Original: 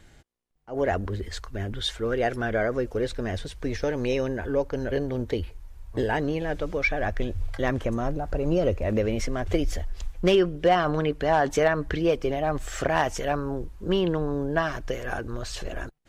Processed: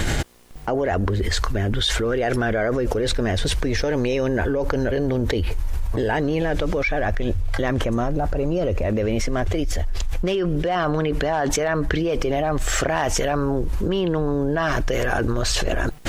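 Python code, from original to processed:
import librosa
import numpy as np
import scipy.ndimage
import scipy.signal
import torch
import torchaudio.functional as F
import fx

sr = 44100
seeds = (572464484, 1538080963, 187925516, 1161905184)

y = fx.env_flatten(x, sr, amount_pct=100)
y = F.gain(torch.from_numpy(y), -4.5).numpy()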